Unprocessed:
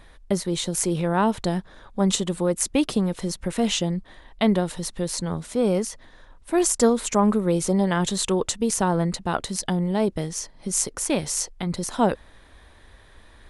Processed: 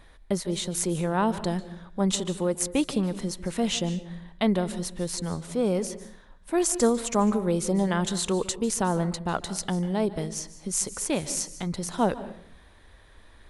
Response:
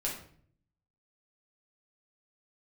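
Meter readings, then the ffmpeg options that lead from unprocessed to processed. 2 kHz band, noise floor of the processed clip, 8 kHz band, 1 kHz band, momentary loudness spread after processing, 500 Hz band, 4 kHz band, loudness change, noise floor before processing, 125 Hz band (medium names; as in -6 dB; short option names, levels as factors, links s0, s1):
-3.5 dB, -53 dBFS, -3.5 dB, -3.5 dB, 8 LU, -3.5 dB, -3.5 dB, -3.5 dB, -51 dBFS, -3.0 dB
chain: -filter_complex "[0:a]asplit=2[s0][s1];[1:a]atrim=start_sample=2205,adelay=145[s2];[s1][s2]afir=irnorm=-1:irlink=0,volume=0.126[s3];[s0][s3]amix=inputs=2:normalize=0,volume=0.668"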